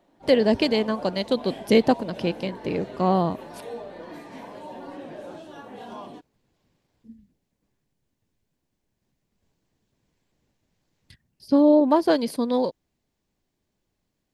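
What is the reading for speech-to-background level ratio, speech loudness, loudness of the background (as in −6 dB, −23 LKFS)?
17.0 dB, −22.5 LKFS, −39.5 LKFS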